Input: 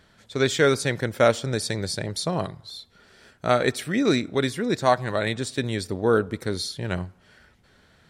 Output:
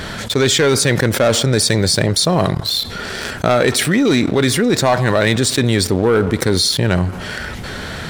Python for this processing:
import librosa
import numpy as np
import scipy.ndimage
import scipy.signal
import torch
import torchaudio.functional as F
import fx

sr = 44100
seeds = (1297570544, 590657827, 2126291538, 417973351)

y = fx.leveller(x, sr, passes=2)
y = fx.env_flatten(y, sr, amount_pct=70)
y = y * 10.0 ** (-1.0 / 20.0)